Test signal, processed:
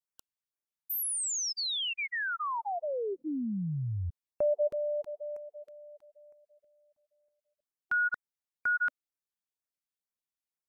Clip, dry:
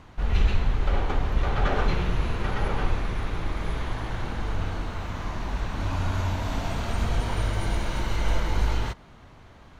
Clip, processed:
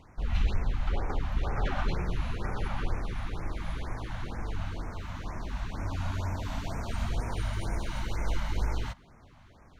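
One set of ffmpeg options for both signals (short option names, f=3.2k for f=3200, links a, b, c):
-af "afftfilt=real='re*(1-between(b*sr/1024,360*pow(3800/360,0.5+0.5*sin(2*PI*2.1*pts/sr))/1.41,360*pow(3800/360,0.5+0.5*sin(2*PI*2.1*pts/sr))*1.41))':imag='im*(1-between(b*sr/1024,360*pow(3800/360,0.5+0.5*sin(2*PI*2.1*pts/sr))/1.41,360*pow(3800/360,0.5+0.5*sin(2*PI*2.1*pts/sr))*1.41))':win_size=1024:overlap=0.75,volume=-5.5dB"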